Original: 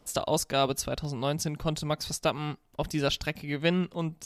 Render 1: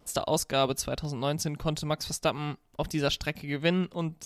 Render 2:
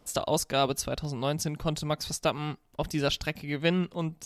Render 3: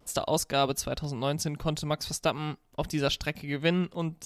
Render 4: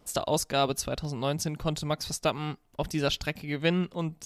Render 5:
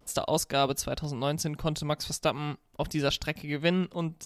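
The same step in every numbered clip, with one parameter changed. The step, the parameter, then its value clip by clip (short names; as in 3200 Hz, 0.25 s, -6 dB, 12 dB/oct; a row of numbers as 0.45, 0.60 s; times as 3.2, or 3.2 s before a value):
vibrato, rate: 1.1, 8.6, 0.51, 2.1, 0.33 Hz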